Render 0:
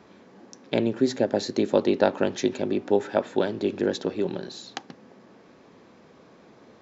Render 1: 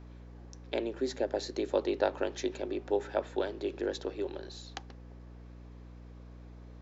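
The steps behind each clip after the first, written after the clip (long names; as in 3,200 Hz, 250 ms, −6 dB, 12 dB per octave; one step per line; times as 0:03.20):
inverse Chebyshev high-pass filter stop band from 150 Hz, stop band 40 dB
mains hum 60 Hz, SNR 13 dB
level −7.5 dB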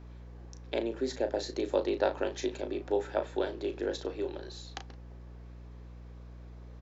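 double-tracking delay 35 ms −8.5 dB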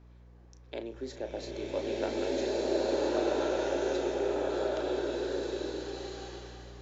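slow-attack reverb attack 1,540 ms, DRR −9 dB
level −7 dB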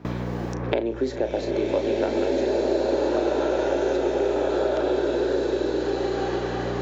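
high-shelf EQ 2,900 Hz −8 dB
noise gate with hold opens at −49 dBFS
multiband upward and downward compressor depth 100%
level +8 dB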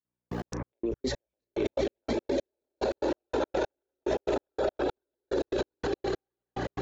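reverb reduction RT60 0.67 s
transient designer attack −5 dB, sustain +9 dB
gate pattern "...x.x..x.x." 144 BPM −60 dB
level −2.5 dB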